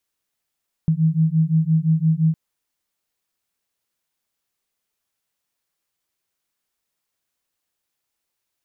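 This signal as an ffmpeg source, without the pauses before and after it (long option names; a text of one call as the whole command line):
ffmpeg -f lavfi -i "aevalsrc='0.126*(sin(2*PI*157*t)+sin(2*PI*162.8*t))':duration=1.46:sample_rate=44100" out.wav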